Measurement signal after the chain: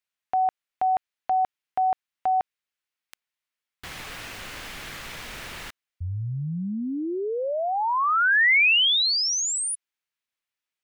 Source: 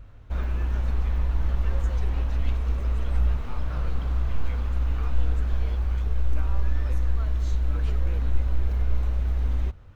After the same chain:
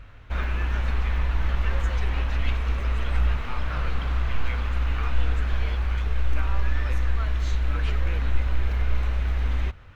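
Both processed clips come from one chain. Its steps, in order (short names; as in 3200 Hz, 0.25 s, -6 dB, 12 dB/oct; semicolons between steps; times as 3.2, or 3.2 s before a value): bell 2200 Hz +11.5 dB 2.3 oct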